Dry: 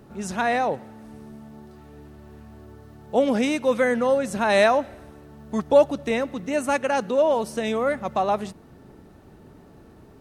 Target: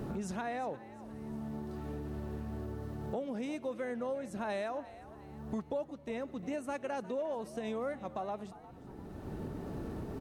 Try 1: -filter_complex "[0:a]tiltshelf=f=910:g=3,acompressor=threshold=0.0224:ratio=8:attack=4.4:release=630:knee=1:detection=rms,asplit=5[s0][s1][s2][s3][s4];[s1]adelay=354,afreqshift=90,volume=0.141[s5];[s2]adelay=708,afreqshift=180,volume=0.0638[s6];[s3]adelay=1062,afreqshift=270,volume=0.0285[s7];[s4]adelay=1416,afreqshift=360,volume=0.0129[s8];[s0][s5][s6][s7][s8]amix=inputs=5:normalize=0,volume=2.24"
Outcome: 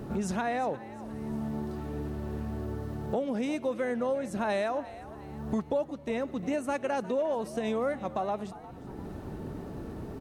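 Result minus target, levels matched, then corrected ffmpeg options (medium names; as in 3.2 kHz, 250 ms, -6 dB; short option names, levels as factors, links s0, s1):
compression: peak gain reduction -7 dB
-filter_complex "[0:a]tiltshelf=f=910:g=3,acompressor=threshold=0.00891:ratio=8:attack=4.4:release=630:knee=1:detection=rms,asplit=5[s0][s1][s2][s3][s4];[s1]adelay=354,afreqshift=90,volume=0.141[s5];[s2]adelay=708,afreqshift=180,volume=0.0638[s6];[s3]adelay=1062,afreqshift=270,volume=0.0285[s7];[s4]adelay=1416,afreqshift=360,volume=0.0129[s8];[s0][s5][s6][s7][s8]amix=inputs=5:normalize=0,volume=2.24"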